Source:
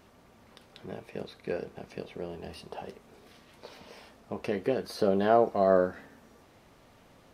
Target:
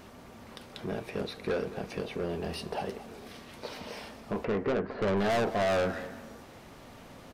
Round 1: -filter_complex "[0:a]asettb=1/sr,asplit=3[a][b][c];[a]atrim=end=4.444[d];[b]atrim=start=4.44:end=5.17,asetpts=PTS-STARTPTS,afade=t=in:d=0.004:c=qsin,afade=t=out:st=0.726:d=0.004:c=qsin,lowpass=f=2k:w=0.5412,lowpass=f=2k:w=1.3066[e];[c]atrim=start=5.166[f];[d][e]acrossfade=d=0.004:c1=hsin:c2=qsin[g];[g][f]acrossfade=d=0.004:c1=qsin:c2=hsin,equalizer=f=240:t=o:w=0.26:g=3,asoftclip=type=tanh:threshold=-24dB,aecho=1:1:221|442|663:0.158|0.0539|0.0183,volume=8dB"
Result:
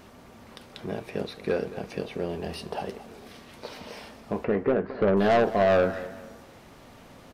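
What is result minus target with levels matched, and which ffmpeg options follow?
soft clip: distortion -5 dB
-filter_complex "[0:a]asettb=1/sr,asplit=3[a][b][c];[a]atrim=end=4.444[d];[b]atrim=start=4.44:end=5.17,asetpts=PTS-STARTPTS,afade=t=in:d=0.004:c=qsin,afade=t=out:st=0.726:d=0.004:c=qsin,lowpass=f=2k:w=0.5412,lowpass=f=2k:w=1.3066[e];[c]atrim=start=5.166[f];[d][e]acrossfade=d=0.004:c1=hsin:c2=qsin[g];[g][f]acrossfade=d=0.004:c1=qsin:c2=hsin,equalizer=f=240:t=o:w=0.26:g=3,asoftclip=type=tanh:threshold=-33dB,aecho=1:1:221|442|663:0.158|0.0539|0.0183,volume=8dB"

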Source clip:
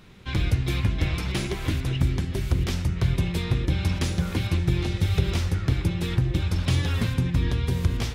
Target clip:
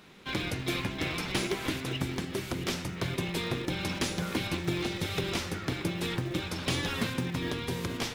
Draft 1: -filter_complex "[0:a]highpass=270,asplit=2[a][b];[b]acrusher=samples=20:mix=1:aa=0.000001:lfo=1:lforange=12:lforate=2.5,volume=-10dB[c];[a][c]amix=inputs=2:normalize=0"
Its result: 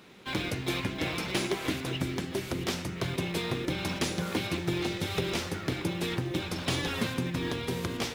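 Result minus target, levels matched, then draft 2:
decimation with a swept rate: distortion -9 dB
-filter_complex "[0:a]highpass=270,asplit=2[a][b];[b]acrusher=samples=61:mix=1:aa=0.000001:lfo=1:lforange=36.6:lforate=2.5,volume=-10dB[c];[a][c]amix=inputs=2:normalize=0"

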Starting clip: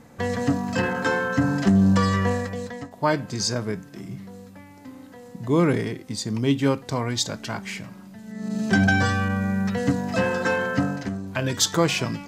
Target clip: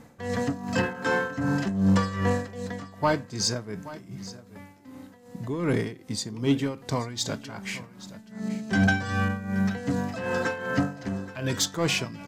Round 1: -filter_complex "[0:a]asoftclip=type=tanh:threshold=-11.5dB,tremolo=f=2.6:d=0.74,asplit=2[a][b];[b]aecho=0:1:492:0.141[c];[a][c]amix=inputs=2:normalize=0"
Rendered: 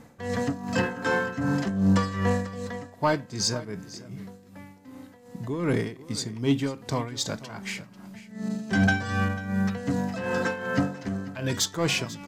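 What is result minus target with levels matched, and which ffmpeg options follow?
echo 0.334 s early
-filter_complex "[0:a]asoftclip=type=tanh:threshold=-11.5dB,tremolo=f=2.6:d=0.74,asplit=2[a][b];[b]aecho=0:1:826:0.141[c];[a][c]amix=inputs=2:normalize=0"

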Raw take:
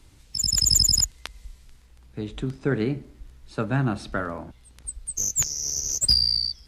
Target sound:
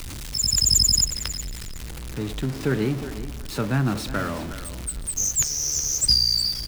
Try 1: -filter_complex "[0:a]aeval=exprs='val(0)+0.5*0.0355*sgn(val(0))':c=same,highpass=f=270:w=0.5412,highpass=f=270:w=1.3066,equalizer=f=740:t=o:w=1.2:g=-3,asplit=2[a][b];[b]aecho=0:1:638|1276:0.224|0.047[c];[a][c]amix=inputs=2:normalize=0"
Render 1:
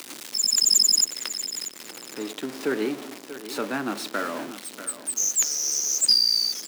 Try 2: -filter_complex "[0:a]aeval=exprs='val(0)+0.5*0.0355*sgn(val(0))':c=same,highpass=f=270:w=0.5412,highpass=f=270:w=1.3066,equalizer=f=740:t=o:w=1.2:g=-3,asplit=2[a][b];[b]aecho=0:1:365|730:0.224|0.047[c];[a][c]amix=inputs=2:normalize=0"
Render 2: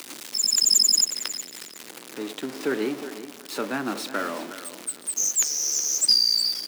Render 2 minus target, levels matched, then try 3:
250 Hz band -4.5 dB
-filter_complex "[0:a]aeval=exprs='val(0)+0.5*0.0355*sgn(val(0))':c=same,equalizer=f=740:t=o:w=1.2:g=-3,asplit=2[a][b];[b]aecho=0:1:365|730:0.224|0.047[c];[a][c]amix=inputs=2:normalize=0"

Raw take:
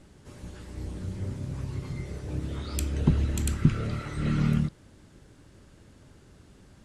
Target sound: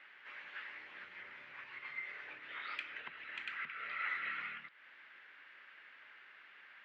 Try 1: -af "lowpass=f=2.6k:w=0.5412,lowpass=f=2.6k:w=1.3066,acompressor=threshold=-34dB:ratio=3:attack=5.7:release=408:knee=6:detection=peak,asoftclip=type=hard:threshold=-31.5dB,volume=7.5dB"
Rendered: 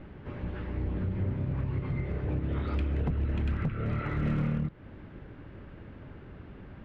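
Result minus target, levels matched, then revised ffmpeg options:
2000 Hz band -16.5 dB
-af "lowpass=f=2.6k:w=0.5412,lowpass=f=2.6k:w=1.3066,acompressor=threshold=-34dB:ratio=3:attack=5.7:release=408:knee=6:detection=peak,highpass=f=1.9k:t=q:w=2,asoftclip=type=hard:threshold=-31.5dB,volume=7.5dB"

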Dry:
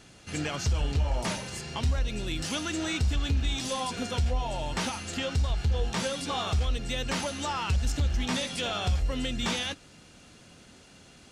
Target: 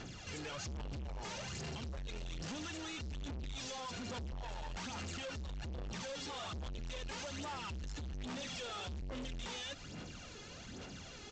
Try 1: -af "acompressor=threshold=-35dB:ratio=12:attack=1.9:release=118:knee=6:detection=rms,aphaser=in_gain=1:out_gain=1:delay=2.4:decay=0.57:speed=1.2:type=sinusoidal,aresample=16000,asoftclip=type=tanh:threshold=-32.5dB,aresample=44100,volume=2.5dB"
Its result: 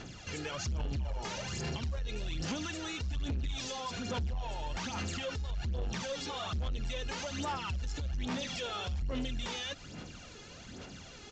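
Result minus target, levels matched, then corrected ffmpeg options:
soft clip: distortion -8 dB
-af "acompressor=threshold=-35dB:ratio=12:attack=1.9:release=118:knee=6:detection=rms,aphaser=in_gain=1:out_gain=1:delay=2.4:decay=0.57:speed=1.2:type=sinusoidal,aresample=16000,asoftclip=type=tanh:threshold=-43.5dB,aresample=44100,volume=2.5dB"

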